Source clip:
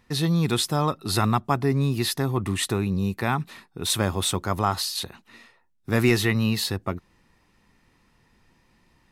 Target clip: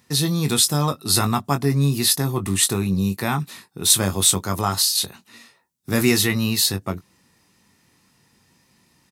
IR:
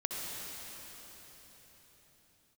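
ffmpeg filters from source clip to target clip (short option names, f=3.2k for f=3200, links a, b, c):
-filter_complex "[0:a]highpass=110,bass=f=250:g=4,treble=f=4k:g=12,asplit=2[a][b];[b]adelay=21,volume=-8dB[c];[a][c]amix=inputs=2:normalize=0"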